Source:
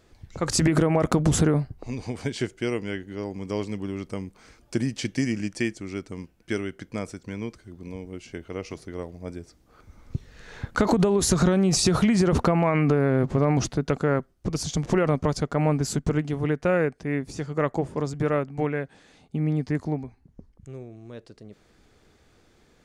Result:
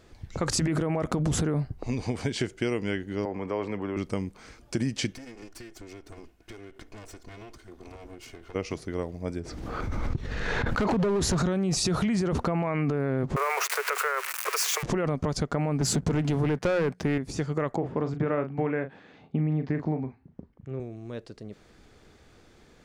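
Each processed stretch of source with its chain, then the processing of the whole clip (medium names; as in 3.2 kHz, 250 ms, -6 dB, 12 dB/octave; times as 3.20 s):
3.25–3.97 s: three-band isolator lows -13 dB, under 430 Hz, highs -22 dB, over 2.3 kHz + level flattener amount 50%
5.13–8.55 s: comb filter that takes the minimum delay 2.8 ms + compression 16:1, threshold -43 dBFS
9.40–11.38 s: low-pass 2.7 kHz 6 dB/octave + hard clipper -21 dBFS + swell ahead of each attack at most 25 dB/s
13.36–14.83 s: zero-crossing glitches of -21.5 dBFS + steep high-pass 400 Hz 96 dB/octave + high-order bell 1.6 kHz +13 dB
15.81–17.18 s: high-pass 54 Hz 24 dB/octave + hum notches 60/120/180 Hz + waveshaping leveller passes 2
17.76–20.80 s: band-pass 100–2600 Hz + doubling 38 ms -10 dB
whole clip: treble shelf 8.4 kHz -4 dB; peak limiter -17.5 dBFS; compression 4:1, threshold -27 dBFS; trim +3.5 dB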